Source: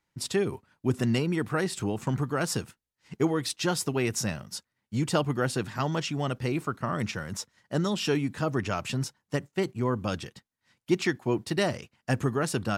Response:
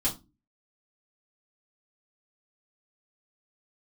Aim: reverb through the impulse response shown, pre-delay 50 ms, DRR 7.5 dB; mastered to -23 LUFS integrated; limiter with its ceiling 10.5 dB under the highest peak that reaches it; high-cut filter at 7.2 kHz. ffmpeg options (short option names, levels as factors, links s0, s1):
-filter_complex "[0:a]lowpass=7200,alimiter=limit=0.0794:level=0:latency=1,asplit=2[s0][s1];[1:a]atrim=start_sample=2205,adelay=50[s2];[s1][s2]afir=irnorm=-1:irlink=0,volume=0.2[s3];[s0][s3]amix=inputs=2:normalize=0,volume=2.82"